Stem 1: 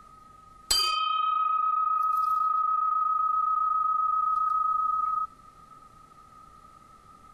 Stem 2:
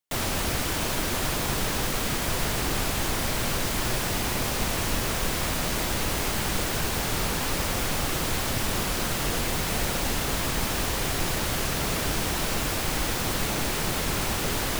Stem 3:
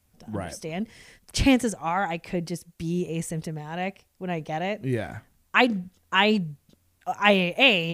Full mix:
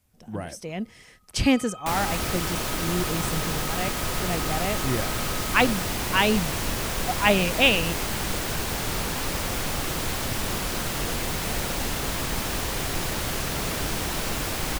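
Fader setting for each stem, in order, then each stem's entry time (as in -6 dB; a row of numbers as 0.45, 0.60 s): -16.0, -1.0, -1.0 dB; 0.65, 1.75, 0.00 s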